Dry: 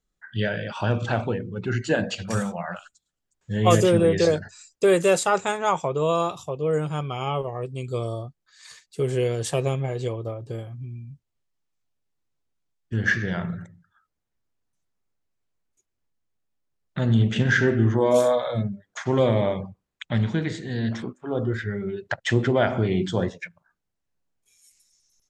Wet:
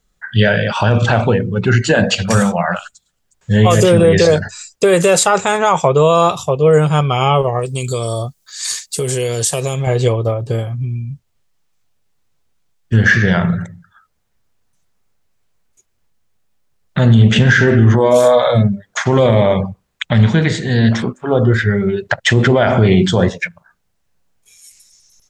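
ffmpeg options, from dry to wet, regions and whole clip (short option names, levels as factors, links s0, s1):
-filter_complex "[0:a]asettb=1/sr,asplit=3[s0][s1][s2];[s0]atrim=end=7.594[s3];[s1]atrim=start=7.59:end=9.87,asetpts=PTS-STARTPTS,afade=t=in:d=0.004:c=qsin,afade=t=out:st=2.276:d=0.004:c=qsin,bass=f=250:g=-2,treble=f=4000:g=15,acompressor=threshold=0.0355:ratio=5:attack=3.2:release=140:knee=1:detection=peak[s4];[s2]atrim=start=9.866[s5];[s3][s4]acrossfade=d=0.004:c1=hsin:c2=qsin[s6];[s6][s5]acrossfade=d=0.004:c1=qsin:c2=hsin,equalizer=f=310:w=2.9:g=-6.5,alimiter=level_in=6.31:limit=0.891:release=50:level=0:latency=1,volume=0.891"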